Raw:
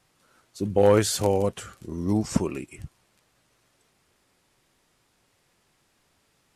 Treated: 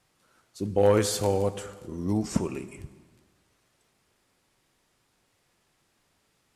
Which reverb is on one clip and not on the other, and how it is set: plate-style reverb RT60 1.5 s, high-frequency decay 0.75×, DRR 11.5 dB; trim -3 dB

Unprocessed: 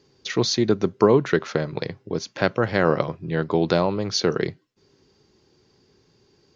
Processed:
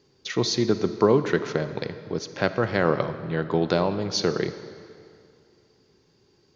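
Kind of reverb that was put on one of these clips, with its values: algorithmic reverb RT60 2.4 s, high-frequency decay 0.85×, pre-delay 5 ms, DRR 11 dB; trim -2.5 dB

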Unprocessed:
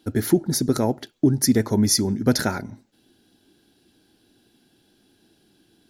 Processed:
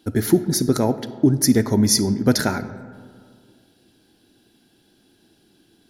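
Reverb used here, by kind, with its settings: algorithmic reverb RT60 2.1 s, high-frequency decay 0.4×, pre-delay 10 ms, DRR 13.5 dB; trim +2 dB

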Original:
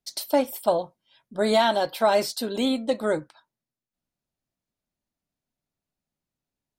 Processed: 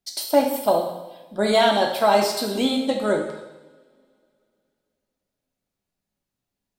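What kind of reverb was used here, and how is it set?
two-slope reverb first 0.95 s, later 3 s, from -26 dB, DRR 1.5 dB; trim +1.5 dB

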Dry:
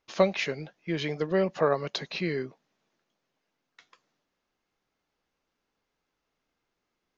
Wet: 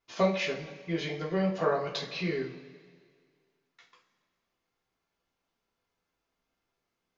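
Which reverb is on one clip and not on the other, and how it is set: two-slope reverb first 0.31 s, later 1.9 s, from -18 dB, DRR -4.5 dB; trim -7.5 dB

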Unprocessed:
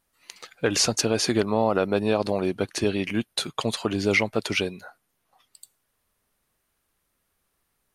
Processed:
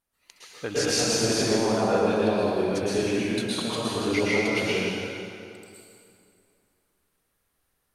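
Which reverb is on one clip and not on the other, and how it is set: plate-style reverb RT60 2.5 s, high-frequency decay 0.8×, pre-delay 100 ms, DRR -9 dB; trim -9.5 dB

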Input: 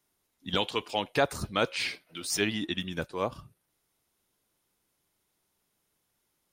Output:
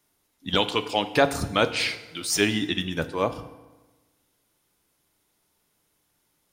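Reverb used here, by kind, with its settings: FDN reverb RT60 1.2 s, low-frequency decay 1.1×, high-frequency decay 0.75×, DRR 10.5 dB; trim +5.5 dB

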